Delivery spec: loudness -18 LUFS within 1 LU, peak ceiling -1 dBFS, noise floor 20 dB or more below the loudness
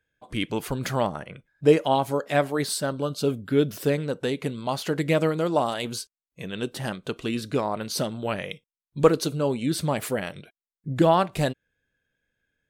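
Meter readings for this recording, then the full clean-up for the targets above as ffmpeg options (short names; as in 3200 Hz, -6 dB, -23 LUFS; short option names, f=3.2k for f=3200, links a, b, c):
loudness -25.5 LUFS; peak -5.0 dBFS; loudness target -18.0 LUFS
-> -af "volume=7.5dB,alimiter=limit=-1dB:level=0:latency=1"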